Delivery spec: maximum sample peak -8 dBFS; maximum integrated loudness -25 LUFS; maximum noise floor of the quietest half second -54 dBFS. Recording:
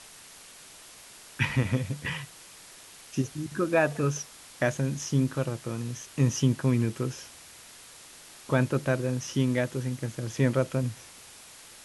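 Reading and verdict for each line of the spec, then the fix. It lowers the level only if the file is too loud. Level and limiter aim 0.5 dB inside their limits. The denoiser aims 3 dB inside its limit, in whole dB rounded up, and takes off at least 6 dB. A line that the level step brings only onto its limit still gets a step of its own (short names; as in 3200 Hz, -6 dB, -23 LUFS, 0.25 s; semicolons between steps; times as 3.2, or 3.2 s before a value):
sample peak -9.5 dBFS: OK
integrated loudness -28.5 LUFS: OK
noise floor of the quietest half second -50 dBFS: fail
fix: denoiser 7 dB, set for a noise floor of -50 dBFS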